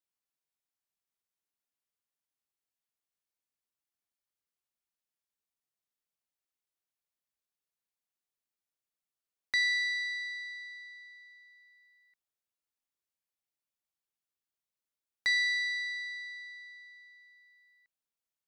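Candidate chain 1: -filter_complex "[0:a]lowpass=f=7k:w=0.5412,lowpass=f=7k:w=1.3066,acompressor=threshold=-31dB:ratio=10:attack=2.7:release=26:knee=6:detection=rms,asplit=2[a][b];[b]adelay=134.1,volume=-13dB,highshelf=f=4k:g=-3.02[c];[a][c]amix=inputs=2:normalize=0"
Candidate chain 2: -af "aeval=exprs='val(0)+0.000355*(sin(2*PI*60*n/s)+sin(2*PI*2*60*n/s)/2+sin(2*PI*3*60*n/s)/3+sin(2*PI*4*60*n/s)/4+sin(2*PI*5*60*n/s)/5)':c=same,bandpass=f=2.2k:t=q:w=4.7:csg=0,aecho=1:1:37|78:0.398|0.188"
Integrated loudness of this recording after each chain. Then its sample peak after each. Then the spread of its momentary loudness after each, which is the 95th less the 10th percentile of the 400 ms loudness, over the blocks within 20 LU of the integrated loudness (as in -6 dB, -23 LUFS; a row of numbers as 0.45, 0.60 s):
-34.5, -33.5 LUFS; -22.0, -24.5 dBFS; 19, 21 LU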